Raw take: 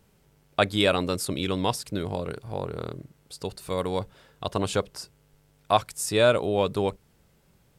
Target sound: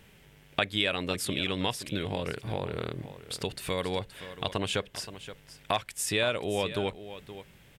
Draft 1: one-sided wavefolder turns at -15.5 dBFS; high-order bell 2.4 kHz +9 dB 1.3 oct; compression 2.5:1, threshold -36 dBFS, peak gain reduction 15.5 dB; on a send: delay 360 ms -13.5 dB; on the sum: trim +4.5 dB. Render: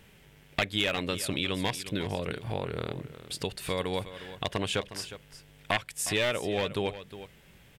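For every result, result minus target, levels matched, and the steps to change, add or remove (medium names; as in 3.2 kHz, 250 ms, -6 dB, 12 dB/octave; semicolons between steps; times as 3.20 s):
one-sided wavefolder: distortion +24 dB; echo 163 ms early
change: one-sided wavefolder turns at -7 dBFS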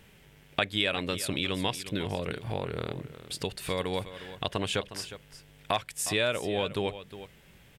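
echo 163 ms early
change: delay 523 ms -13.5 dB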